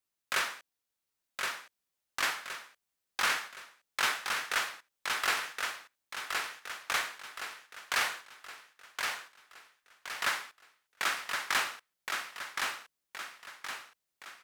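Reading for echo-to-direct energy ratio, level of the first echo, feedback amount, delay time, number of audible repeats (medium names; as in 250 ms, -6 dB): -3.0 dB, -4.0 dB, 45%, 1069 ms, 5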